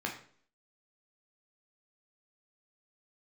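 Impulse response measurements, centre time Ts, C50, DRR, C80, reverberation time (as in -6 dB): 21 ms, 8.0 dB, 0.0 dB, 12.0 dB, 0.50 s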